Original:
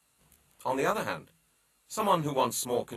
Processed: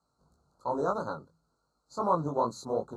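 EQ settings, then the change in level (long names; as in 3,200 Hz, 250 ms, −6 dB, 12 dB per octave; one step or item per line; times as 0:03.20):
Chebyshev band-stop filter 1,400–4,200 Hz, order 4
high-frequency loss of the air 160 metres
0.0 dB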